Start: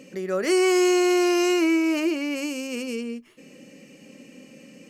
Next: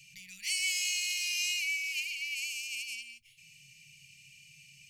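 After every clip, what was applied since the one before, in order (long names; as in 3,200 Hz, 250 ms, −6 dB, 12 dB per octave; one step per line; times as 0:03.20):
Chebyshev band-stop filter 140–2,300 Hz, order 5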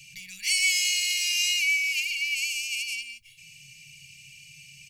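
comb filter 1.8 ms, depth 47%
level +6.5 dB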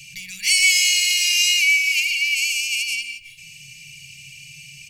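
feedback echo with a low-pass in the loop 168 ms, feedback 27%, low-pass 2,500 Hz, level −10 dB
level +7.5 dB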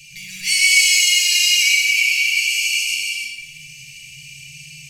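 reverb whose tail is shaped and stops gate 360 ms flat, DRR −4 dB
level −2.5 dB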